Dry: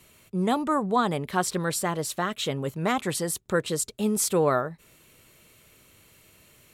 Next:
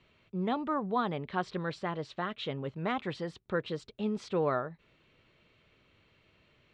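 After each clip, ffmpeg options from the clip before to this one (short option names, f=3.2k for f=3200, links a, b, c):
-af "lowpass=f=3.9k:w=0.5412,lowpass=f=3.9k:w=1.3066,volume=-7dB"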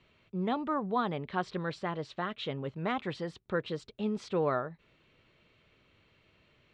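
-af anull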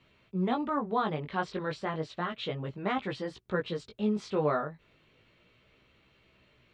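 -af "flanger=delay=15:depth=5.2:speed=0.33,volume=4.5dB"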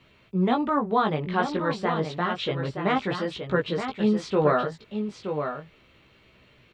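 -af "aecho=1:1:923:0.422,volume=6.5dB"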